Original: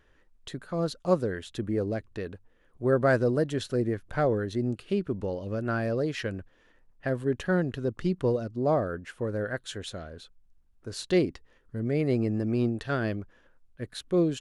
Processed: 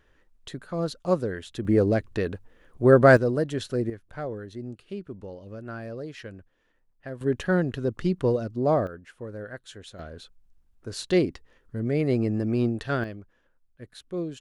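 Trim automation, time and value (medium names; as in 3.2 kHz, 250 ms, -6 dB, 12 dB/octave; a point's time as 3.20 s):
+0.5 dB
from 1.65 s +8 dB
from 3.17 s +0.5 dB
from 3.90 s -8 dB
from 7.21 s +2.5 dB
from 8.87 s -6.5 dB
from 9.99 s +2 dB
from 13.04 s -7 dB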